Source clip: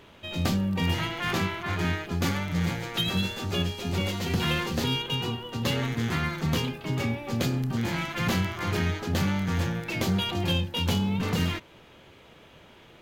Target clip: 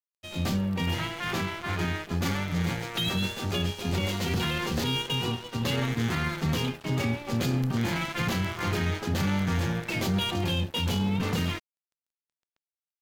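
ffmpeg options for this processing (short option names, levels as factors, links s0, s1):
-af "aeval=exprs='sgn(val(0))*max(abs(val(0))-0.00794,0)':c=same,dynaudnorm=f=330:g=13:m=1.41,alimiter=limit=0.119:level=0:latency=1:release=13"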